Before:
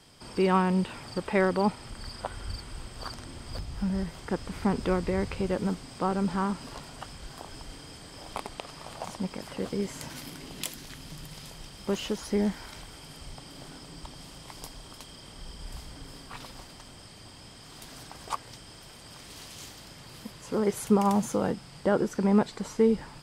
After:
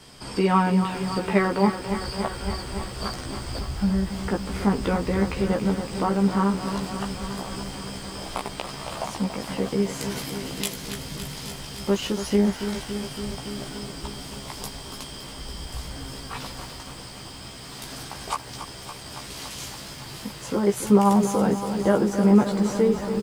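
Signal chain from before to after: in parallel at +1 dB: compressor, threshold -36 dBFS, peak gain reduction 18 dB; on the sum: doubler 15 ms -3 dB; lo-fi delay 0.282 s, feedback 80%, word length 8-bit, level -10 dB

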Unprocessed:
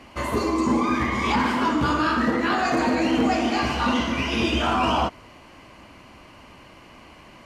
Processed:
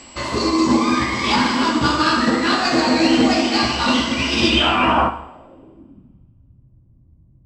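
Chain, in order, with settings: CVSD 64 kbps; bell 7700 Hz +5.5 dB 1.7 oct; whine 7700 Hz -36 dBFS; low-pass sweep 4700 Hz -> 110 Hz, 4.45–6.33; two-slope reverb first 0.76 s, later 2 s, from -25 dB, DRR 6 dB; upward expander 1.5:1, over -23 dBFS; gain +4 dB

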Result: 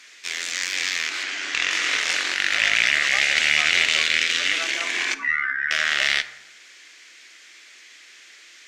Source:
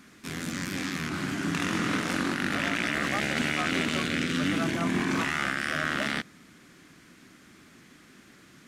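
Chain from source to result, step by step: 5.14–5.71 spectral contrast raised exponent 3.6; HPF 440 Hz 24 dB/oct; band shelf 3700 Hz +14.5 dB 2.4 oct; added harmonics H 2 -23 dB, 7 -38 dB, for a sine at -1 dBFS; 1.23–1.71 air absorption 61 m; plate-style reverb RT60 0.98 s, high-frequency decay 0.5×, DRR 11.5 dB; gain -1.5 dB

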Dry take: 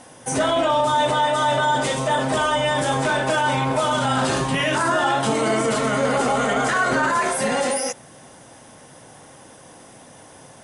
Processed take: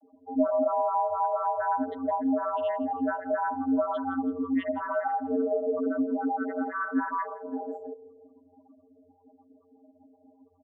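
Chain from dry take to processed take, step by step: loudest bins only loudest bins 4; frequency-shifting echo 0.165 s, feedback 46%, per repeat -42 Hz, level -18.5 dB; vocoder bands 32, square 89.2 Hz; gain -4 dB

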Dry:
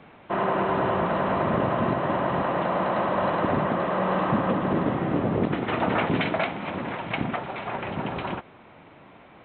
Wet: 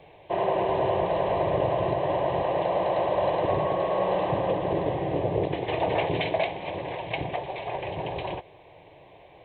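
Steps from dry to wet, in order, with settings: 3.48–4.07 whine 1100 Hz -27 dBFS; fixed phaser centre 560 Hz, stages 4; gain +2.5 dB

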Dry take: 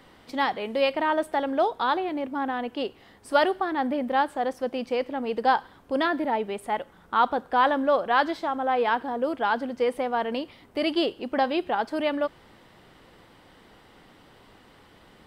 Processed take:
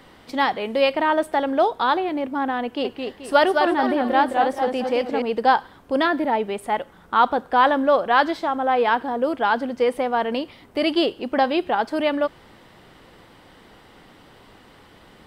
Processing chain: 2.63–5.22 warbling echo 0.217 s, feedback 37%, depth 128 cents, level -4.5 dB; gain +4.5 dB

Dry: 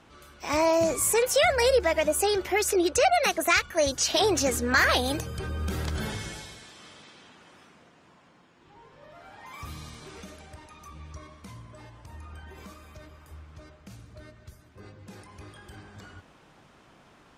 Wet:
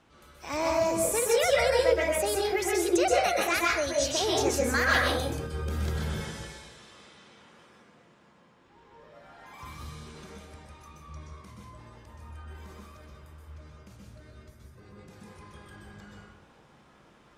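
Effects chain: plate-style reverb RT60 0.54 s, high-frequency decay 0.55×, pre-delay 0.115 s, DRR -2.5 dB; gain -6.5 dB

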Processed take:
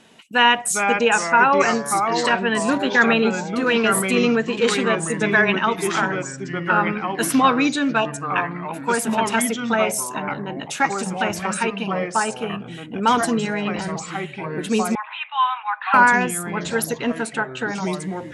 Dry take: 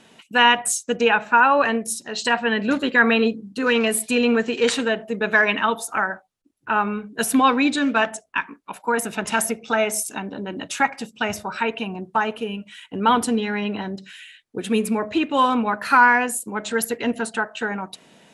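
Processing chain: 8–8.21 spectral delete 1200–2400 Hz; echoes that change speed 0.338 s, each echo -3 st, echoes 3, each echo -6 dB; 14.95–15.94 Chebyshev band-pass 800–3700 Hz, order 5

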